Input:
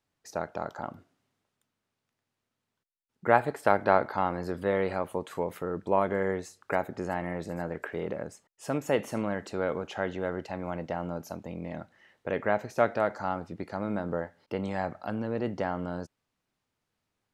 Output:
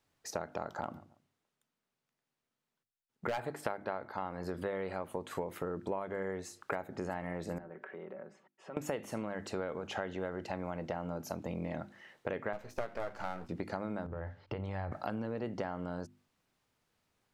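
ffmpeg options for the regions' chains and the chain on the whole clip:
-filter_complex "[0:a]asettb=1/sr,asplit=3[s0][s1][s2];[s0]atrim=end=0.814[s3];[s1]atrim=start=0.81:end=3.41,asetpts=PTS-STARTPTS,afade=t=in:d=0.004:c=qsin,afade=t=out:st=2.596:d=0.004:c=qsin,agate=range=0.398:threshold=0.00316:ratio=16:release=100:detection=peak,asplit=2[s4][s5];[s5]adelay=141,lowpass=f=910:p=1,volume=0.0794,asplit=2[s6][s7];[s7]adelay=141,lowpass=f=910:p=1,volume=0.32[s8];[s4][s6][s8]amix=inputs=3:normalize=0,atrim=end_sample=114660,asoftclip=type=hard:threshold=0.0891[s9];[s2]atrim=start=3.406[s10];[s3][s9]acrossfade=d=0.004:c1=hsin:c2=qsin[s11];[s11][s10]acrossfade=d=0.004:c1=qsin:c2=hsin,asettb=1/sr,asplit=3[s12][s13][s14];[s12]atrim=end=7.584[s15];[s13]atrim=start=7.58:end=8.77,asetpts=PTS-STARTPTS,afade=t=in:d=0.004:c=qsin,afade=t=out:st=1.186:d=0.004:c=qsin,aecho=1:1:5.3:0.52,atrim=end_sample=52479,acompressor=threshold=0.00282:ratio=3:attack=3.2:release=140:knee=1:detection=peak,highpass=200,lowpass=2300[s16];[s14]atrim=start=8.766[s17];[s15][s16]acrossfade=d=0.004:c1=hsin:c2=qsin[s18];[s18][s17]acrossfade=d=0.004:c1=qsin:c2=hsin,asettb=1/sr,asplit=3[s19][s20][s21];[s19]atrim=end=12.534[s22];[s20]atrim=start=12.53:end=13.49,asetpts=PTS-STARTPTS,afade=t=in:d=0.004:c=qsin,afade=t=out:st=0.956:d=0.004:c=qsin,aeval=exprs='if(lt(val(0),0),0.251*val(0),val(0))':c=same,agate=range=0.0224:threshold=0.00447:ratio=3:release=100:detection=peak,asplit=2[s23][s24];[s24]adelay=16,volume=0.266[s25];[s23][s25]amix=inputs=2:normalize=0,atrim=end_sample=42336[s26];[s21]atrim=start=13.486[s27];[s22][s26]acrossfade=d=0.004:c1=hsin:c2=qsin[s28];[s28][s27]acrossfade=d=0.004:c1=qsin:c2=hsin,asettb=1/sr,asplit=3[s29][s30][s31];[s29]atrim=end=14.064[s32];[s30]atrim=start=14.06:end=14.92,asetpts=PTS-STARTPTS,afade=t=in:d=0.004:c=qsin,afade=t=out:st=0.856:d=0.004:c=qsin,lowpass=4000,lowshelf=f=140:t=q:w=1.5:g=12,acompressor=threshold=0.0158:ratio=6:attack=3.2:release=140:knee=1:detection=peak[s33];[s31]atrim=start=14.916[s34];[s32][s33]acrossfade=d=0.004:c1=hsin:c2=qsin[s35];[s35][s34]acrossfade=d=0.004:c1=qsin:c2=hsin,bandreject=f=50:t=h:w=6,bandreject=f=100:t=h:w=6,bandreject=f=150:t=h:w=6,bandreject=f=200:t=h:w=6,bandreject=f=250:t=h:w=6,bandreject=f=300:t=h:w=6,bandreject=f=350:t=h:w=6,acompressor=threshold=0.0141:ratio=12,volume=1.58"

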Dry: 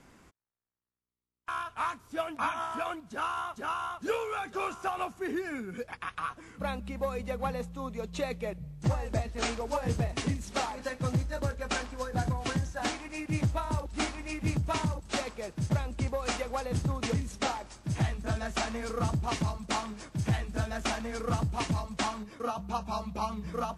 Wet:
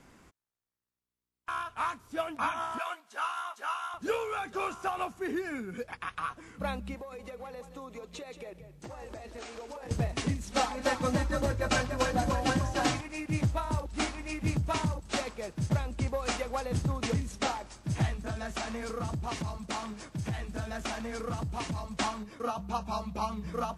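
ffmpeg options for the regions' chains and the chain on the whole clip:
-filter_complex "[0:a]asettb=1/sr,asplit=3[s0][s1][s2];[s0]atrim=end=2.784[s3];[s1]atrim=start=2.78:end=3.94,asetpts=PTS-STARTPTS,afade=t=in:d=0.004:c=qsin,afade=t=out:st=1.156:d=0.004:c=qsin,highpass=800,asplit=2[s4][s5];[s5]adelay=14,volume=0.422[s6];[s4][s6]amix=inputs=2:normalize=0,atrim=end_sample=51156[s7];[s2]atrim=start=3.936[s8];[s3][s7]acrossfade=d=0.004:c1=hsin:c2=qsin[s9];[s9][s8]acrossfade=d=0.004:c1=qsin:c2=hsin,asettb=1/sr,asplit=3[s10][s11][s12];[s10]atrim=end=6.944[s13];[s11]atrim=start=6.94:end=9.91,asetpts=PTS-STARTPTS,afade=t=in:d=0.004:c=qsin,afade=t=out:st=2.966:d=0.004:c=qsin,lowshelf=f=240:t=q:w=1.5:g=-8.5,acompressor=threshold=0.0112:ratio=16:attack=3.2:release=140:knee=1:detection=peak,aecho=1:1:179:0.282,atrim=end_sample=130977[s14];[s12]atrim=start=9.906[s15];[s13][s14]acrossfade=d=0.004:c1=hsin:c2=qsin[s16];[s16][s15]acrossfade=d=0.004:c1=qsin:c2=hsin,asettb=1/sr,asplit=3[s17][s18][s19];[s17]atrim=end=10.524[s20];[s18]atrim=start=10.52:end=13.01,asetpts=PTS-STARTPTS,afade=t=in:d=0.004:c=qsin,afade=t=out:st=2.486:d=0.004:c=qsin,aecho=1:1:3.9:0.87,atrim=end_sample=109809,asplit=5[s21][s22][s23][s24][s25];[s22]adelay=293,afreqshift=45,volume=0.562[s26];[s23]adelay=586,afreqshift=90,volume=0.197[s27];[s24]adelay=879,afreqshift=135,volume=0.0692[s28];[s25]adelay=1172,afreqshift=180,volume=0.024[s29];[s21][s26][s27][s28][s29]amix=inputs=5:normalize=0,atrim=end_sample=109809[s30];[s19]atrim=start=13.006[s31];[s20][s30]acrossfade=d=0.004:c1=hsin:c2=qsin[s32];[s32][s31]acrossfade=d=0.004:c1=qsin:c2=hsin,asettb=1/sr,asplit=3[s33][s34][s35];[s33]atrim=end=18.184[s36];[s34]atrim=start=18.18:end=21.88,asetpts=PTS-STARTPTS,afade=t=in:d=0.004:c=qsin,afade=t=out:st=3.696:d=0.004:c=qsin,highpass=49,acompressor=threshold=0.0251:ratio=2.5:attack=3.2:release=140:knee=1:detection=peak[s37];[s35]atrim=start=21.876[s38];[s36][s37]acrossfade=d=0.004:c1=hsin:c2=qsin[s39];[s39][s38]acrossfade=d=0.004:c1=qsin:c2=hsin"

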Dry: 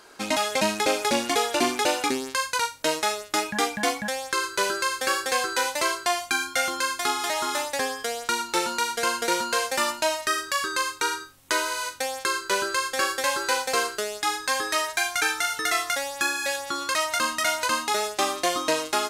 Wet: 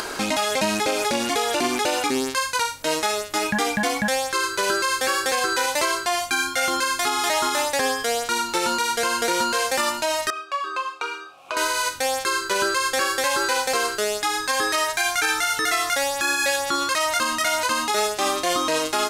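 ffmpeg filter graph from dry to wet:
-filter_complex "[0:a]asettb=1/sr,asplit=3[s0][s1][s2];[s0]atrim=end=10.304[s3];[s1]atrim=start=10.3:end=11.57,asetpts=PTS-STARTPTS,afade=t=in:d=0.004:c=qsin,afade=t=out:st=1.266:d=0.004:c=qsin,asplit=3[s4][s5][s6];[s4]bandpass=f=730:t=q:w=8,volume=1[s7];[s5]bandpass=f=1090:t=q:w=8,volume=0.501[s8];[s6]bandpass=f=2440:t=q:w=8,volume=0.355[s9];[s7][s8][s9]amix=inputs=3:normalize=0,lowshelf=f=230:g=-5.5,asplit=2[s10][s11];[s11]adelay=28,volume=0.447[s12];[s10][s12]amix=inputs=2:normalize=0,atrim=end_sample=56007[s13];[s2]atrim=start=11.566[s14];[s3][s13]acrossfade=d=0.004:c1=hsin:c2=qsin[s15];[s15][s14]acrossfade=d=0.004:c1=qsin:c2=hsin,lowshelf=f=93:g=4.5,acompressor=mode=upward:threshold=0.0355:ratio=2.5,alimiter=limit=0.0944:level=0:latency=1:release=67,volume=2.66"

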